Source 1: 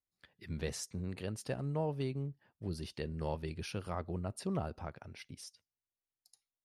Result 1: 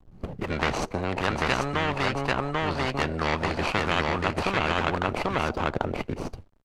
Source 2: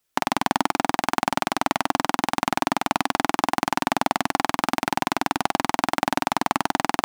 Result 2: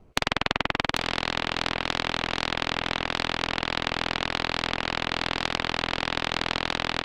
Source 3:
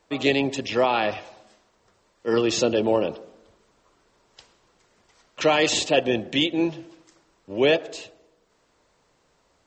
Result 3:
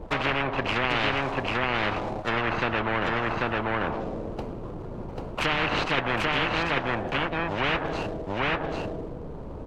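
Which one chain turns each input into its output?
median filter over 25 samples; tilt EQ -4 dB/octave; low-pass that closes with the level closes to 1.9 kHz, closed at -14.5 dBFS; on a send: delay 791 ms -3 dB; on the sum: spectrum-flattening compressor 10:1; normalise loudness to -27 LUFS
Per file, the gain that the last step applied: +9.0 dB, +1.0 dB, -7.0 dB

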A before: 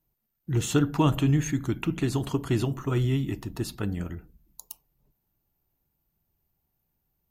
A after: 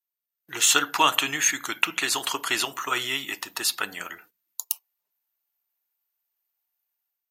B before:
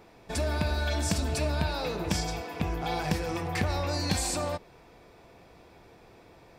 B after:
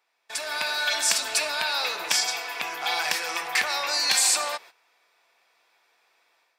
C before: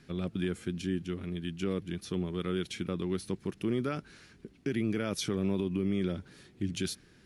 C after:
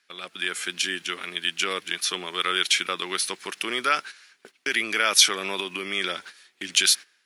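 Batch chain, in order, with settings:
gate -47 dBFS, range -15 dB; high-pass 1.3 kHz 12 dB/octave; level rider gain up to 8.5 dB; normalise loudness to -24 LUFS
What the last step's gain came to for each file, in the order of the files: +6.5 dB, +3.0 dB, +12.0 dB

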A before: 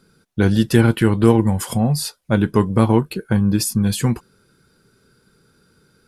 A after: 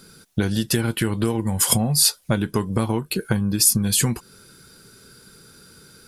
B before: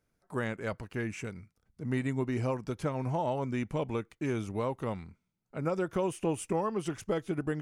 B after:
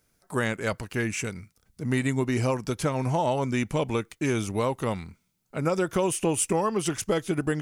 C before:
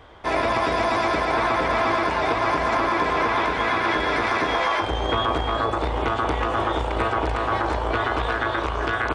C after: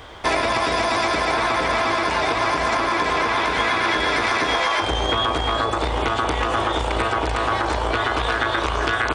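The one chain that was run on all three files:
compression 16:1, threshold -24 dBFS; treble shelf 3.1 kHz +11 dB; trim +6 dB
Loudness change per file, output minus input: -2.5 LU, +6.5 LU, +2.0 LU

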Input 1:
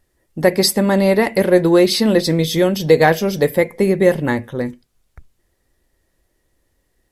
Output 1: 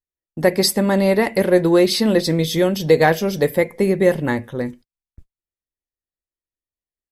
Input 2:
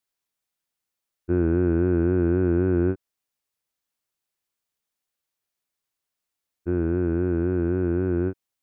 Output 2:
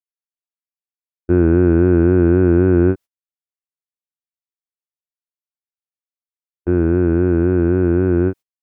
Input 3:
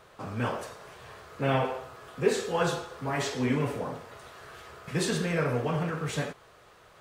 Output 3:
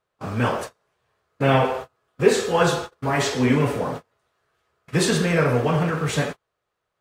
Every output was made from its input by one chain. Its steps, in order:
gate -38 dBFS, range -32 dB; peak normalisation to -3 dBFS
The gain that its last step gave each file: -2.0 dB, +8.5 dB, +8.5 dB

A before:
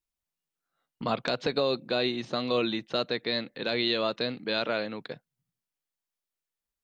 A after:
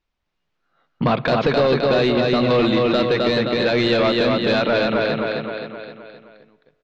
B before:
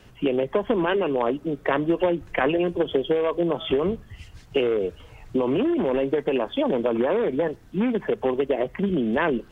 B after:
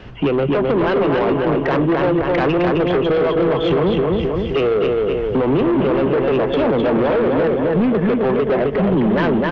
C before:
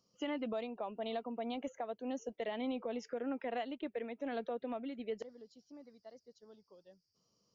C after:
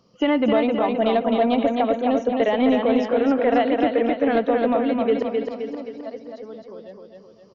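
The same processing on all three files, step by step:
feedback delay 261 ms, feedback 50%, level -4 dB; in parallel at -0.5 dB: compression, threshold -29 dBFS; on the sum: saturation -21 dBFS; Gaussian low-pass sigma 2.1 samples; spring tank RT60 1.9 s, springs 60 ms, chirp 70 ms, DRR 19 dB; dynamic bell 140 Hz, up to +7 dB, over -49 dBFS, Q 3; peak normalisation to -9 dBFS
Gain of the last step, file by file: +10.0 dB, +8.0 dB, +13.5 dB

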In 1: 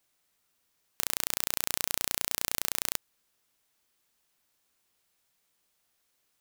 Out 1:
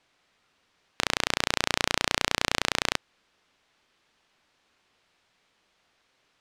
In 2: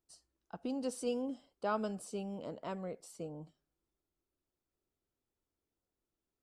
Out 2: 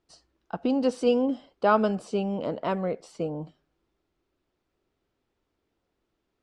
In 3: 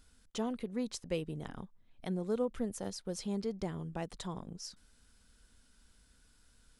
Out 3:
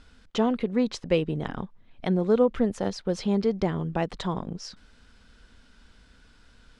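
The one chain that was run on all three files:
low-pass 3.7 kHz 12 dB/octave; bass shelf 160 Hz -3.5 dB; normalise loudness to -27 LUFS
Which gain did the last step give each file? +12.0 dB, +14.0 dB, +13.0 dB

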